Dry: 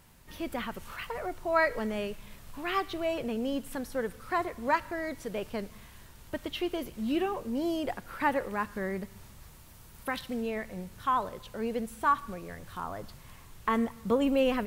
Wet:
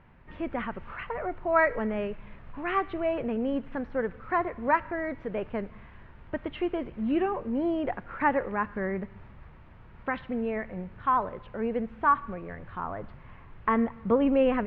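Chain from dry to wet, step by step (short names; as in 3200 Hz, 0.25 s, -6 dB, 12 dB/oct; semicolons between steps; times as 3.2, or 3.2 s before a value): LPF 2300 Hz 24 dB/oct; gain +3 dB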